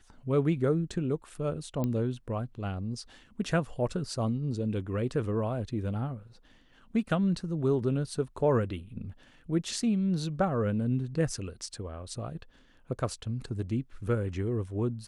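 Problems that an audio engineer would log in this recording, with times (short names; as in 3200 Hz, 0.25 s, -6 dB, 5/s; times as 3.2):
1.84 pop -19 dBFS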